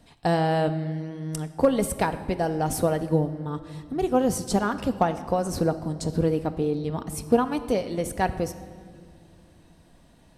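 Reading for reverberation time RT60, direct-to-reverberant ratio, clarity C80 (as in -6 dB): 2.1 s, 9.0 dB, 14.0 dB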